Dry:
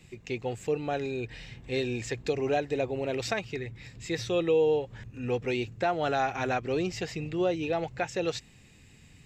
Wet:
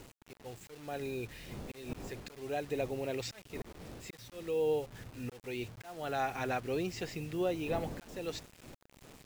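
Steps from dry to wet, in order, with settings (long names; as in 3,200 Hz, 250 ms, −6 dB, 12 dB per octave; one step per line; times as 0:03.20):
wind on the microphone 370 Hz −38 dBFS
volume swells 395 ms
bit reduction 8 bits
level −5.5 dB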